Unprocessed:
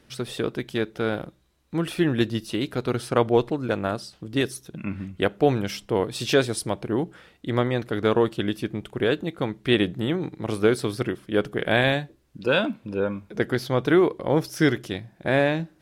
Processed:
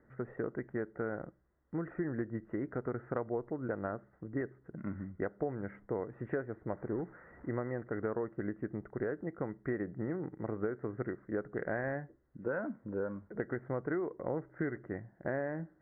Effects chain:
0:06.73–0:07.49: linear delta modulator 32 kbit/s, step −41 dBFS
Chebyshev low-pass with heavy ripple 2,000 Hz, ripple 3 dB
downward compressor 6 to 1, threshold −26 dBFS, peak gain reduction 11.5 dB
level −6 dB

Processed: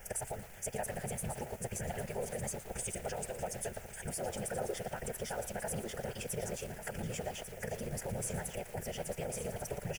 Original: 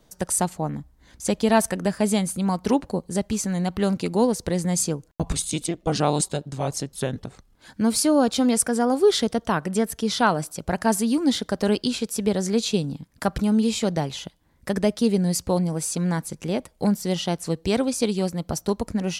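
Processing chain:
high-pass filter 110 Hz 12 dB per octave
parametric band 140 Hz −8.5 dB 0.74 octaves
notch filter 2,100 Hz, Q 29
brickwall limiter −16.5 dBFS, peak gain reduction 11.5 dB
downward compressor 4 to 1, threshold −36 dBFS, peak gain reduction 13.5 dB
random phases in short frames
phase-vocoder stretch with locked phases 0.52×
background noise pink −55 dBFS
phaser with its sweep stopped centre 1,100 Hz, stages 6
on a send: single-tap delay 1,145 ms −9.5 dB
on the sum: feedback echo at a low word length 116 ms, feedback 55%, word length 8 bits, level −11 dB
level +4 dB

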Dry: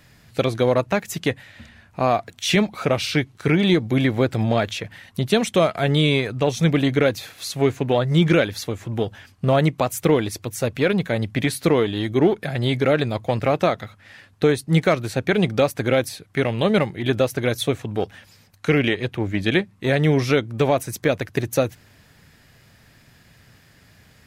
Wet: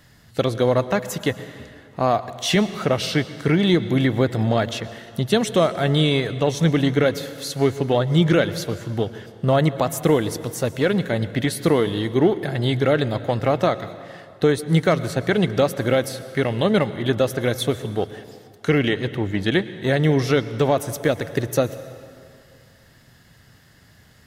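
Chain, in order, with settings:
notch filter 2,400 Hz, Q 6.5
on a send: convolution reverb RT60 2.3 s, pre-delay 101 ms, DRR 14 dB

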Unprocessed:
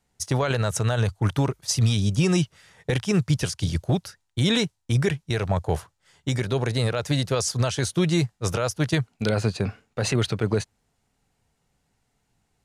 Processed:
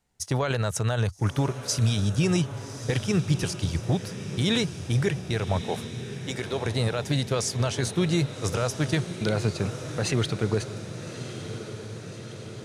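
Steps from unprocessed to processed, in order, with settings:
0:05.61–0:06.66: high-pass filter 310 Hz
on a send: feedback delay with all-pass diffusion 1,193 ms, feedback 65%, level −11 dB
on the sum: level −2.5 dB

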